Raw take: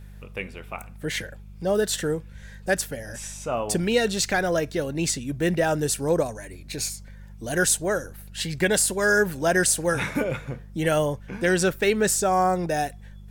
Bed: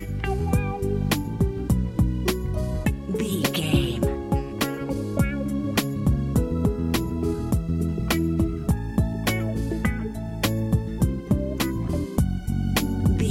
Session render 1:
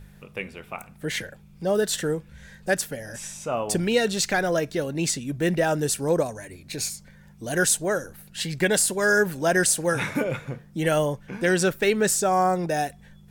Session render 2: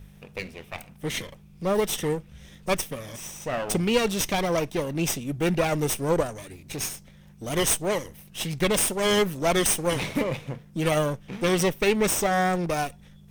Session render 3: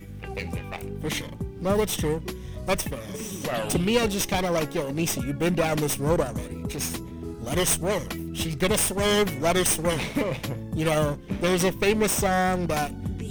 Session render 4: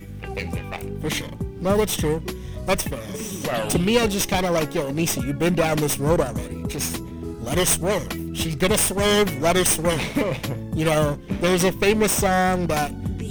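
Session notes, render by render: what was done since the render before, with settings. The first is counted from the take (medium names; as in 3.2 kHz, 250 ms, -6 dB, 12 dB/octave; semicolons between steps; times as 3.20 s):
de-hum 50 Hz, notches 2
comb filter that takes the minimum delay 0.34 ms
add bed -10.5 dB
trim +3.5 dB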